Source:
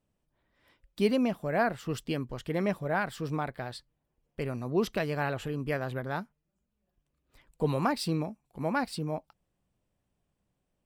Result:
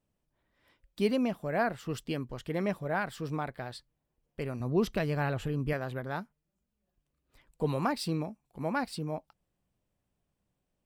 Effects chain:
0:04.60–0:05.73: low-shelf EQ 160 Hz +10 dB
level −2 dB

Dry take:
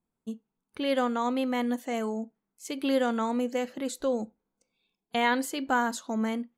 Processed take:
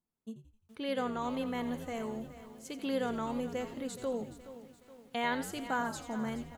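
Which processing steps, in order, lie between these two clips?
echo with shifted repeats 86 ms, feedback 47%, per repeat −77 Hz, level −12 dB
feedback echo at a low word length 422 ms, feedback 55%, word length 8 bits, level −14 dB
level −7.5 dB

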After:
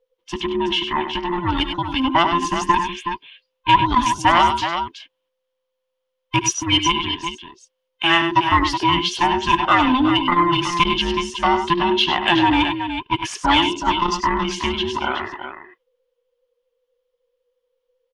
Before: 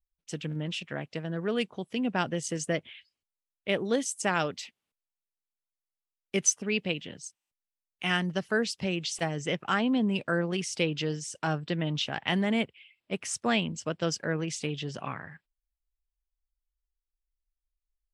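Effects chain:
frequency inversion band by band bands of 500 Hz
thirty-one-band graphic EQ 1,000 Hz +9 dB, 3,150 Hz +9 dB, 8,000 Hz −9 dB
on a send: multi-tap delay 72/99/371 ms −16.5/−9/−9.5 dB
on the sum: mid-hump overdrive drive 10 dB, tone 2,800 Hz, clips at −6.5 dBFS
low-shelf EQ 480 Hz +4.5 dB
saturating transformer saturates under 400 Hz
level +6.5 dB

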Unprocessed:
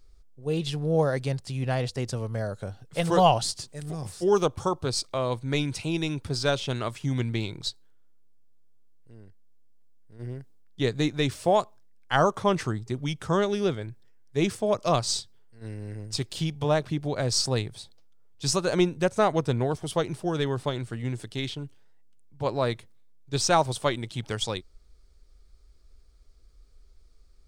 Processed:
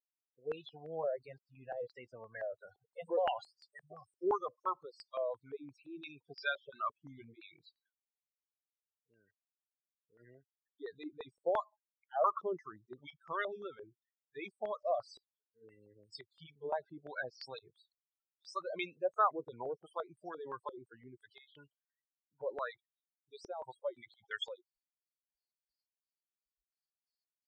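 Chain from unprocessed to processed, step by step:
first difference
spectral peaks only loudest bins 16
low-pass on a step sequencer 5.8 Hz 400–1,900 Hz
level +5 dB

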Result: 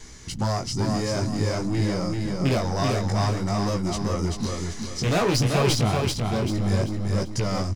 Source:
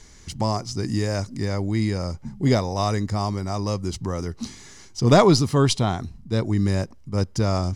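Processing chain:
loose part that buzzes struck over −17 dBFS, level −13 dBFS
in parallel at +2.5 dB: downward compressor, threshold −31 dBFS, peak gain reduction 19 dB
on the sum: transient designer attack −2 dB, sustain +2 dB
gain into a clipping stage and back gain 16.5 dB
pitch vibrato 2 Hz 16 cents
chorus effect 0.55 Hz, delay 15.5 ms, depth 7.8 ms
on a send: repeating echo 388 ms, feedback 38%, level −3.5 dB

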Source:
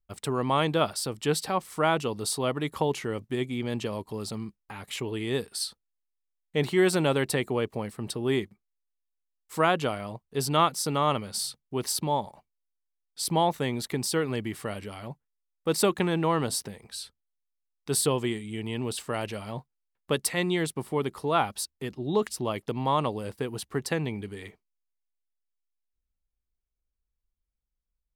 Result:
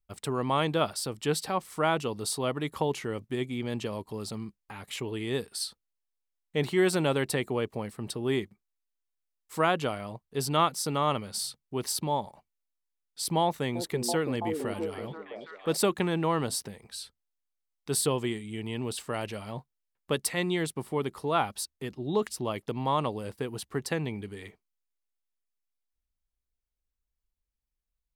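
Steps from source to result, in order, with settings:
0:13.42–0:15.77: echo through a band-pass that steps 331 ms, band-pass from 340 Hz, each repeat 0.7 octaves, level −1 dB
level −2 dB

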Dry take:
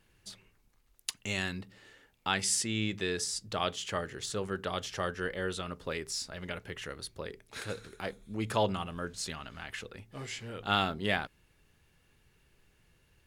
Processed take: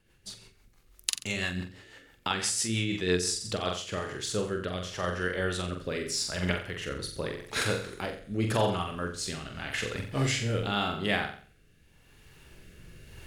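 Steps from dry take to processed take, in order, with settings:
camcorder AGC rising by 9.1 dB per second
flutter between parallel walls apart 7.6 metres, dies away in 0.51 s
rotating-speaker cabinet horn 6 Hz, later 0.85 Hz, at 0:03.24
level +1.5 dB

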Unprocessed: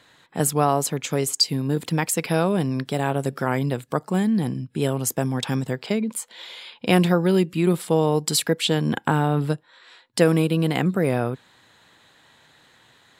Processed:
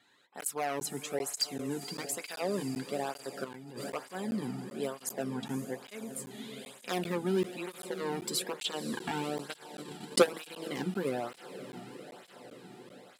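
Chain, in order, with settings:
wavefolder on the positive side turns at −11.5 dBFS
0:05.33–0:06.08: high-shelf EQ 3,500 Hz −11 dB
feedback delay with all-pass diffusion 514 ms, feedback 73%, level −12 dB
0:09.46–0:10.44: transient designer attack +11 dB, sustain −10 dB
notch comb filter 160 Hz
0:03.44–0:03.90: compressor whose output falls as the input rises −33 dBFS, ratio −1
low-shelf EQ 110 Hz −10.5 dB
regular buffer underruns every 0.39 s, samples 512, zero, from 0:00.41
through-zero flanger with one copy inverted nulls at 1.1 Hz, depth 2 ms
level −7 dB

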